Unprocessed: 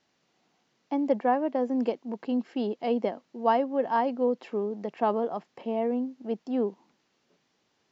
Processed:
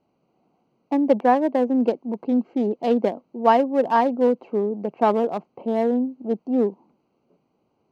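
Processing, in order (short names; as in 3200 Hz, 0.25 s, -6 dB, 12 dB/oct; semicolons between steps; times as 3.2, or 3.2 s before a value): Wiener smoothing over 25 samples; gain +7.5 dB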